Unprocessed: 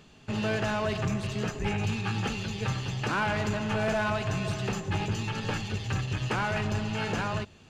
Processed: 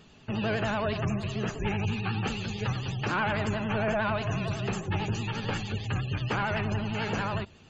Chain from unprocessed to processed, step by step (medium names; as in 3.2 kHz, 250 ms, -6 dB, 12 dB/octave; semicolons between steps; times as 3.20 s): spectral gate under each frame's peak -30 dB strong; 3.90–4.80 s: de-hum 302.9 Hz, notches 34; vibrato 11 Hz 86 cents